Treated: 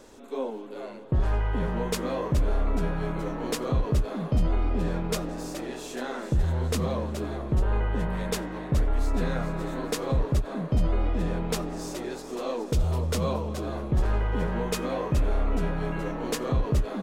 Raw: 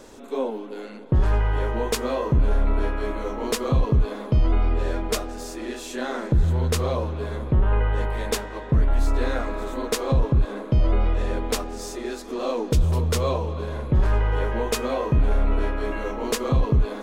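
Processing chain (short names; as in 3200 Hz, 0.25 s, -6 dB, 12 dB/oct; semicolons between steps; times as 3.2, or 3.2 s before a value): frequency-shifting echo 0.422 s, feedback 47%, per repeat +130 Hz, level -10 dB; ending taper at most 250 dB/s; gain -5 dB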